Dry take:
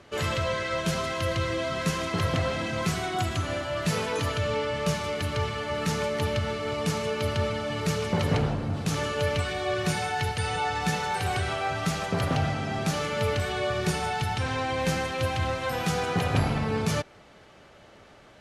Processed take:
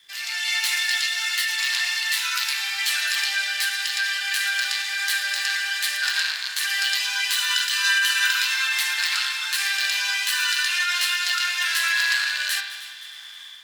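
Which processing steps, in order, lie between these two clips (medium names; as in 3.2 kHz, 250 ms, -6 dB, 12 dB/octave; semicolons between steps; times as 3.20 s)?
rattle on loud lows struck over -26 dBFS, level -21 dBFS; whistle 2 kHz -49 dBFS; level rider gain up to 11 dB; Chebyshev high-pass 890 Hz, order 4; formant shift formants +4 st; spring tank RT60 1.2 s, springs 32 ms, chirp 75 ms, DRR 4 dB; speed mistake 33 rpm record played at 45 rpm; crossover distortion -57.5 dBFS; multi-head delay 104 ms, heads second and third, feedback 54%, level -16.5 dB; trim -1.5 dB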